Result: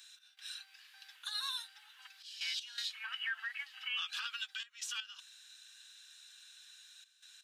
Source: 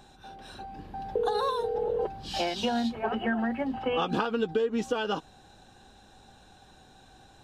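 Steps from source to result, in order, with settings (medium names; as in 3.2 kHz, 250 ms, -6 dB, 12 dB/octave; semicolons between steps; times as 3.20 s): Bessel high-pass 2.7 kHz, order 8; peak limiter -35 dBFS, peak gain reduction 10 dB; trance gate "x.xxxxxxxxxx." 81 bpm -12 dB; trim +6.5 dB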